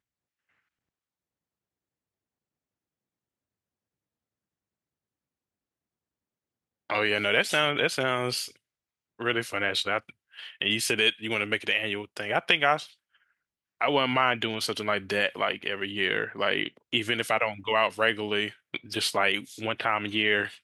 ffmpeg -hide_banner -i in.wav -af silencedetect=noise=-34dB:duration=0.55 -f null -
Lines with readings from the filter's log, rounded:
silence_start: 0.00
silence_end: 6.90 | silence_duration: 6.90
silence_start: 8.47
silence_end: 9.20 | silence_duration: 0.73
silence_start: 12.84
silence_end: 13.81 | silence_duration: 0.97